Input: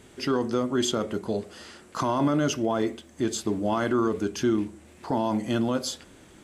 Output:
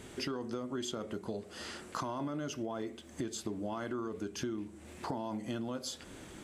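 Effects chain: compression 6:1, threshold -38 dBFS, peak gain reduction 17 dB; trim +2 dB

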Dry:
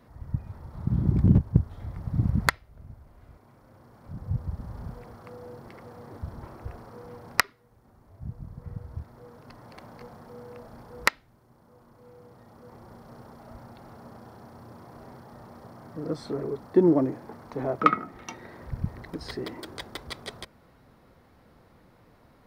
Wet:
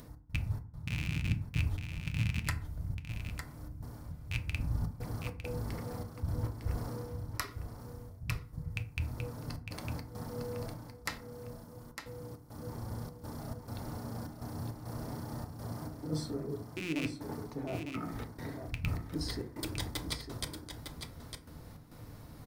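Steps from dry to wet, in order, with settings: rattle on loud lows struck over -26 dBFS, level -9 dBFS; trance gate "x.xx.xxx" 102 bpm -60 dB; reverse; compression 6:1, threshold -40 dBFS, peak gain reduction 25.5 dB; reverse; tone controls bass +9 dB, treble +13 dB; upward compressor, threshold -50 dBFS; on a send: delay 905 ms -7.5 dB; on the sum: FDN reverb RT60 0.47 s, low-frequency decay 1.35×, high-frequency decay 0.5×, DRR 6 dB

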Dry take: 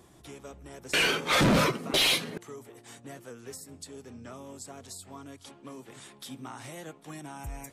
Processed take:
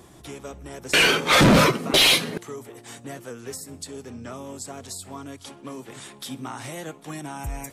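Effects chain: feedback echo behind a high-pass 61 ms, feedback 50%, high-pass 3.9 kHz, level -23 dB; trim +7.5 dB

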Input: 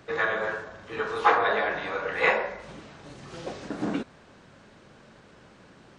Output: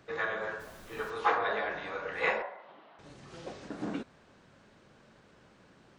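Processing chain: 0.59–1.09 s: added noise pink -47 dBFS; 2.42–2.99 s: cabinet simulation 440–3200 Hz, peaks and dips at 470 Hz -5 dB, 730 Hz +5 dB, 1 kHz +3 dB, 1.6 kHz -4 dB, 2.4 kHz -7 dB; trim -7 dB

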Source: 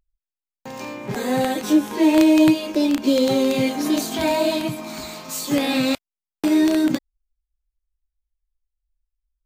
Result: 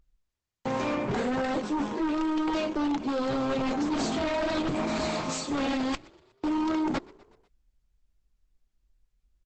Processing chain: treble shelf 3.6 kHz -11.5 dB; reverse; compression 8:1, threshold -28 dBFS, peak gain reduction 16.5 dB; reverse; sine folder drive 11 dB, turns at -18 dBFS; frequency-shifting echo 123 ms, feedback 54%, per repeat +33 Hz, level -22.5 dB; trim -6 dB; Opus 12 kbps 48 kHz

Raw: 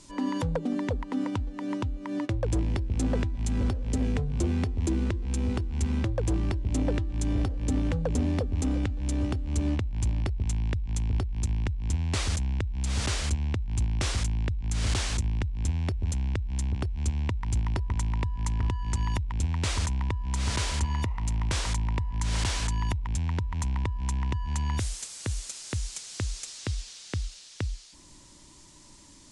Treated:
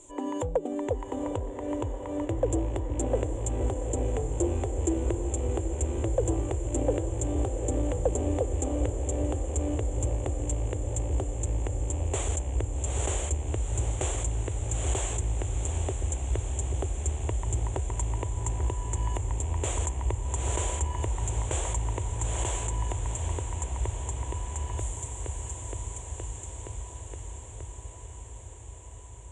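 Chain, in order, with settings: fade out at the end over 7.38 s; FFT filter 110 Hz 0 dB, 200 Hz -14 dB, 360 Hz +9 dB, 750 Hz +8 dB, 1.4 kHz -5 dB, 3.3 kHz -2 dB, 5 kHz -24 dB, 7.2 kHz +12 dB, 11 kHz -6 dB; echo that smears into a reverb 798 ms, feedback 77%, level -8 dB; trim -3.5 dB

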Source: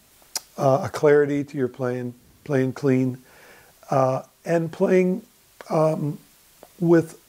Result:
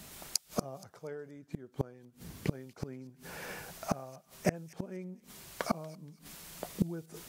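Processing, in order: peaking EQ 170 Hz +8.5 dB 0.34 oct; inverted gate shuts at -20 dBFS, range -32 dB; feedback echo behind a high-pass 237 ms, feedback 31%, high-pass 3.1 kHz, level -14.5 dB; trim +5 dB

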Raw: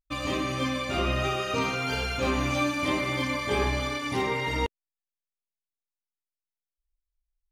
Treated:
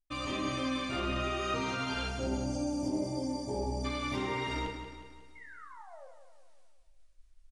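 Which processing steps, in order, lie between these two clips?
time-frequency box 2.08–3.85 s, 1–4.4 kHz -25 dB; peak limiter -21.5 dBFS, peak gain reduction 7 dB; reverse; upward compressor, threshold -43 dBFS; reverse; painted sound fall, 5.35–6.08 s, 500–2200 Hz -47 dBFS; feedback delay 181 ms, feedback 50%, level -9 dB; on a send at -2.5 dB: reverberation RT60 0.40 s, pre-delay 3 ms; on the sum: resampled via 22.05 kHz; trim -6 dB

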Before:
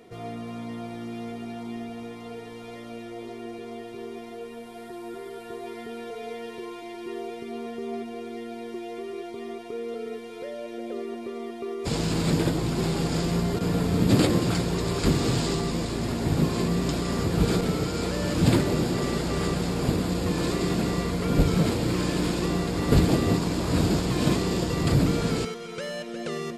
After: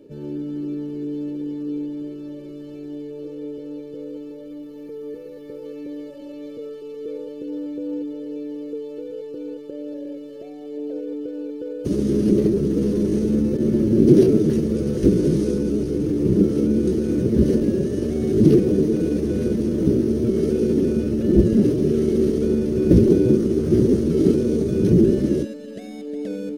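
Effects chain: pitch shift +4 st; resonant low shelf 550 Hz +13.5 dB, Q 3; trim -10 dB

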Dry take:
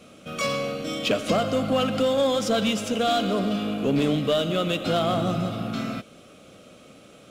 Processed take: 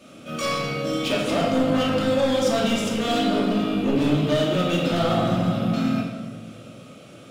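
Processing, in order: high-pass 62 Hz; saturation -21.5 dBFS, distortion -14 dB; simulated room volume 1000 m³, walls mixed, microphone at 2.6 m; trim -1.5 dB

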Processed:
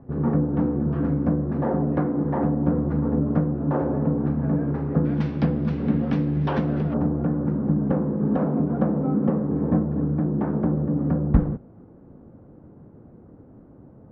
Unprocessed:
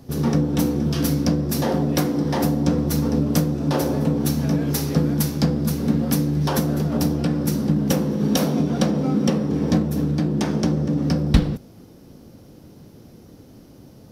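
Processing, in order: low-pass 1.5 kHz 24 dB/octave, from 5.05 s 2.8 kHz, from 6.94 s 1.4 kHz; trim -2 dB

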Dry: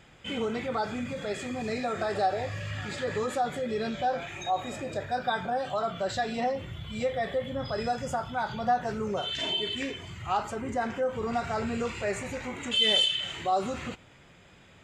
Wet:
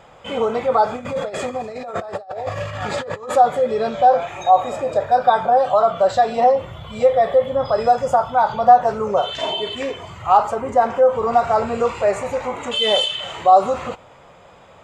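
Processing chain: 0.96–3.36 s: compressor with a negative ratio -36 dBFS, ratio -0.5; high-order bell 760 Hz +12 dB; trim +3.5 dB

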